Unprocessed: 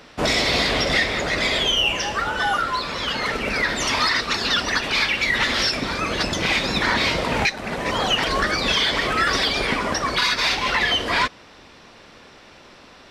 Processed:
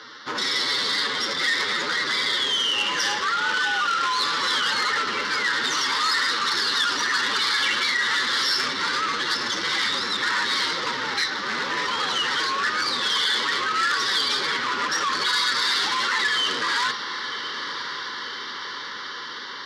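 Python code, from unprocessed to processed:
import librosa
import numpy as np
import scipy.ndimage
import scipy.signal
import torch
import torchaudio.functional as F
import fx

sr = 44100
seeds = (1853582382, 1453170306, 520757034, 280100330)

p1 = fx.octave_divider(x, sr, octaves=1, level_db=-1.0)
p2 = fx.stretch_vocoder(p1, sr, factor=1.5)
p3 = fx.fixed_phaser(p2, sr, hz=2500.0, stages=6)
p4 = fx.over_compress(p3, sr, threshold_db=-29.0, ratio=-0.5)
p5 = p3 + (p4 * librosa.db_to_amplitude(1.0))
p6 = fx.bandpass_edges(p5, sr, low_hz=490.0, high_hz=6800.0)
p7 = p6 + fx.echo_diffused(p6, sr, ms=1064, feedback_pct=71, wet_db=-11, dry=0)
y = fx.transformer_sat(p7, sr, knee_hz=3700.0)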